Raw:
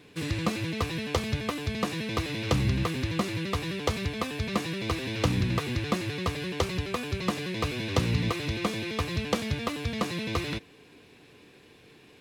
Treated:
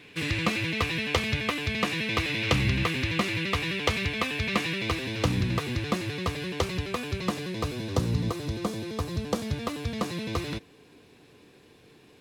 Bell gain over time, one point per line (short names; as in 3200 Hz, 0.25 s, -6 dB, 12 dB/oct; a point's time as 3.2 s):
bell 2400 Hz 1.3 oct
4.72 s +9 dB
5.13 s +0.5 dB
7.12 s +0.5 dB
8.03 s -11 dB
9.22 s -11 dB
9.68 s -4 dB